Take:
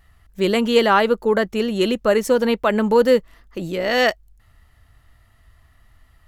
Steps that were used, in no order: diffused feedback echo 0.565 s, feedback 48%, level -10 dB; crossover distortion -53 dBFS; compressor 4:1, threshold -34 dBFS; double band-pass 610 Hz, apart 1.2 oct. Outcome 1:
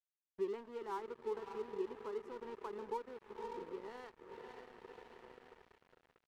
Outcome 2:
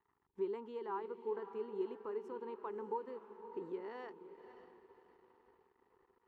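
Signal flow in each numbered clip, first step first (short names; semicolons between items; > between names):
diffused feedback echo > compressor > double band-pass > crossover distortion; compressor > diffused feedback echo > crossover distortion > double band-pass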